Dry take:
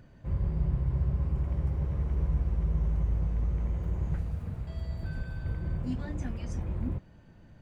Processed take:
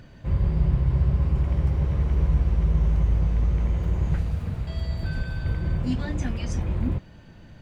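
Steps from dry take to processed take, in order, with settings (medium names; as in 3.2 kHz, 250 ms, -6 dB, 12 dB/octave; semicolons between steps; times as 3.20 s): peaking EQ 3.7 kHz +6.5 dB 1.8 oct; trim +7 dB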